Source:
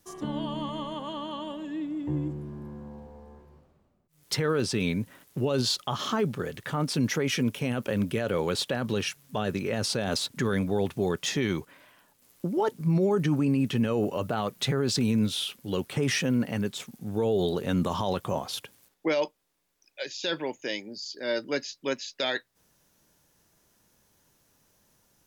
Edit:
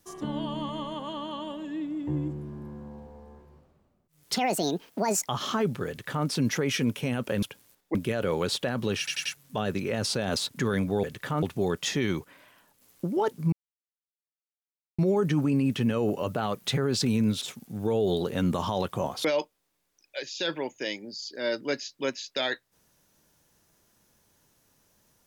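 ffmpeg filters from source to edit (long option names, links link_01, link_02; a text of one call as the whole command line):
ffmpeg -i in.wav -filter_complex "[0:a]asplit=13[link_01][link_02][link_03][link_04][link_05][link_06][link_07][link_08][link_09][link_10][link_11][link_12][link_13];[link_01]atrim=end=4.364[link_14];[link_02]atrim=start=4.36:end=5.86,asetpts=PTS-STARTPTS,asetrate=72324,aresample=44100,atrim=end_sample=40335,asetpts=PTS-STARTPTS[link_15];[link_03]atrim=start=5.856:end=8.012[link_16];[link_04]atrim=start=18.558:end=19.082[link_17];[link_05]atrim=start=8.008:end=9.142[link_18];[link_06]atrim=start=9.048:end=9.142[link_19];[link_07]atrim=start=9.048:end=9.142[link_20];[link_08]atrim=start=9.048:end=10.832[link_21];[link_09]atrim=start=6.458:end=6.852[link_22];[link_10]atrim=start=10.828:end=12.93,asetpts=PTS-STARTPTS,afade=type=out:start_time=2.098:duration=0.004:curve=hsin,apad=pad_dur=1.46[link_23];[link_11]atrim=start=12.93:end=15.362,asetpts=PTS-STARTPTS,afade=type=in:duration=0.004:curve=hsin[link_24];[link_12]atrim=start=16.728:end=18.562[link_25];[link_13]atrim=start=19.078[link_26];[link_14][link_15]acrossfade=duration=0.004:curve1=hsin:curve2=hsin[link_27];[link_27][link_16]acrossfade=duration=0.004:curve1=hsin:curve2=hsin[link_28];[link_28][link_17]acrossfade=duration=0.004:curve1=hsin:curve2=hsin[link_29];[link_29][link_18]acrossfade=duration=0.004:curve1=hsin:curve2=hsin[link_30];[link_30][link_19]acrossfade=duration=0.004:curve1=hsin:curve2=hsin[link_31];[link_31][link_20]acrossfade=duration=0.004:curve1=hsin:curve2=hsin[link_32];[link_32][link_21]acrossfade=duration=0.004:curve1=hsin:curve2=hsin[link_33];[link_33][link_22]acrossfade=duration=0.004:curve1=hsin:curve2=hsin[link_34];[link_23][link_24]concat=n=2:v=0:a=1[link_35];[link_34][link_35]acrossfade=duration=0.004:curve1=hsin:curve2=hsin[link_36];[link_36][link_25]acrossfade=duration=0.004:curve1=hsin:curve2=hsin[link_37];[link_37][link_26]acrossfade=duration=0.004:curve1=hsin:curve2=hsin" out.wav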